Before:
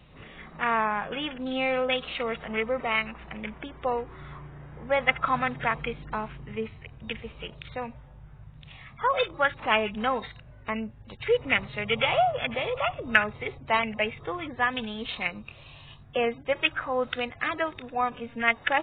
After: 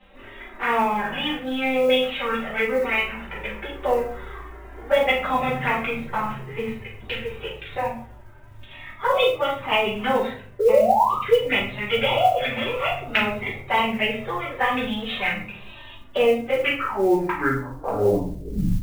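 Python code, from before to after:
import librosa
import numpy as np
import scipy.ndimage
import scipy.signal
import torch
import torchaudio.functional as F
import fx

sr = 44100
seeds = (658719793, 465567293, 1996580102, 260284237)

p1 = fx.tape_stop_end(x, sr, length_s=2.42)
p2 = fx.spec_paint(p1, sr, seeds[0], shape='rise', start_s=10.59, length_s=0.58, low_hz=410.0, high_hz=1300.0, level_db=-21.0)
p3 = fx.env_flanger(p2, sr, rest_ms=4.0, full_db=-22.0)
p4 = fx.low_shelf(p3, sr, hz=260.0, db=-8.5)
p5 = fx.room_shoebox(p4, sr, seeds[1], volume_m3=39.0, walls='mixed', distance_m=1.2)
p6 = fx.rider(p5, sr, range_db=4, speed_s=0.5)
p7 = p5 + F.gain(torch.from_numpy(p6), 2.5).numpy()
p8 = scipy.signal.sosfilt(scipy.signal.butter(2, 3000.0, 'lowpass', fs=sr, output='sos'), p7)
p9 = fx.doubler(p8, sr, ms=39.0, db=-8.0)
p10 = fx.mod_noise(p9, sr, seeds[2], snr_db=30)
p11 = fx.hum_notches(p10, sr, base_hz=50, count=3)
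y = F.gain(torch.from_numpy(p11), -5.0).numpy()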